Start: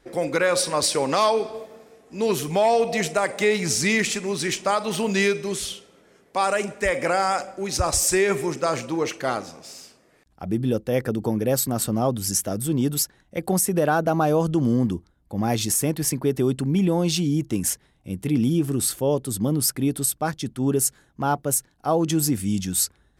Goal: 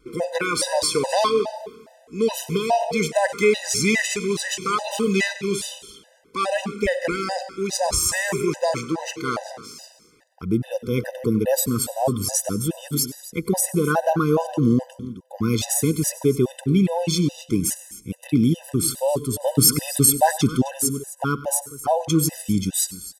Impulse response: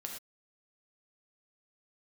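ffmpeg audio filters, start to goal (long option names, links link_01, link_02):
-filter_complex "[0:a]asettb=1/sr,asplit=3[link_01][link_02][link_03];[link_01]atrim=end=6.444[link_04];[link_02]atrim=start=6.44:end=7.52,asetpts=PTS-STARTPTS,afade=type=in:duration=0.004:curve=qsin,afade=type=out:start_time=1.076:duration=0.004:curve=qsin,equalizer=frequency=125:width_type=o:width=1:gain=-5,equalizer=frequency=250:width_type=o:width=1:gain=8,equalizer=frequency=1000:width_type=o:width=1:gain=-11,equalizer=frequency=4000:width_type=o:width=1:gain=5,equalizer=frequency=8000:width_type=o:width=1:gain=-7[link_05];[link_03]atrim=start=7.516[link_06];[link_04][link_05]acrossfade=duration=0.004:curve1=hsin:curve2=qsin[link_07];[link_07][link_06]acrossfade=duration=0.004:curve1=qsin:curve2=hsin,asettb=1/sr,asplit=3[link_08][link_09][link_10];[link_08]atrim=end=19.424[link_11];[link_09]atrim=start=19.42:end=20.73,asetpts=PTS-STARTPTS,afade=type=in:duration=0.004:curve=qsin,afade=type=out:start_time=1.306:duration=0.004:curve=qsin,acontrast=84[link_12];[link_10]atrim=start=20.726[link_13];[link_11][link_12]acrossfade=duration=0.004:curve1=hsin:curve2=qsin[link_14];[link_14][link_13]acrossfade=duration=0.004:curve1=qsin:curve2=hsin,aecho=1:1:261:0.158,asplit=2[link_15][link_16];[1:a]atrim=start_sample=2205,adelay=96[link_17];[link_16][link_17]afir=irnorm=-1:irlink=0,volume=-14.5dB[link_18];[link_15][link_18]amix=inputs=2:normalize=0,afftfilt=real='re*gt(sin(2*PI*2.4*pts/sr)*(1-2*mod(floor(b*sr/1024/510),2)),0)':imag='im*gt(sin(2*PI*2.4*pts/sr)*(1-2*mod(floor(b*sr/1024/510),2)),0)':win_size=1024:overlap=0.75,volume=3.5dB"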